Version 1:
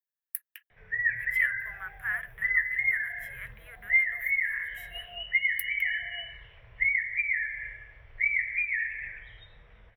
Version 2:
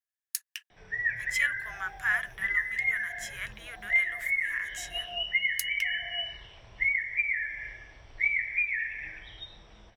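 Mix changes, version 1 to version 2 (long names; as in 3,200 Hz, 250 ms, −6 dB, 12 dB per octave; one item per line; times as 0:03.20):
speech: add parametric band 2,500 Hz +6.5 dB 2.1 octaves
master: remove drawn EQ curve 130 Hz 0 dB, 300 Hz −14 dB, 480 Hz −1 dB, 770 Hz −8 dB, 1,200 Hz −3 dB, 2,000 Hz +3 dB, 6,700 Hz −27 dB, 13,000 Hz +4 dB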